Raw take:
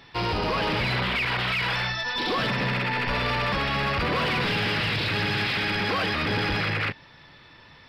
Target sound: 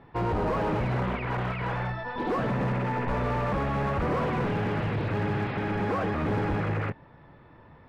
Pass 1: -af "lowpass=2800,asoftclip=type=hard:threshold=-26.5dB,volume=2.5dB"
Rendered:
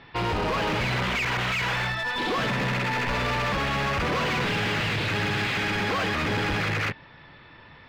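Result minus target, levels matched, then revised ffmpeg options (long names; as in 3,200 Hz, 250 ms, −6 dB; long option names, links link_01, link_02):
2,000 Hz band +6.5 dB
-af "lowpass=930,asoftclip=type=hard:threshold=-26.5dB,volume=2.5dB"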